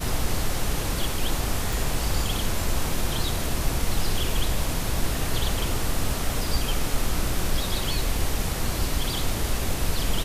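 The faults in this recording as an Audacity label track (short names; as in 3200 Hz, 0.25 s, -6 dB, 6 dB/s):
1.730000	1.730000	pop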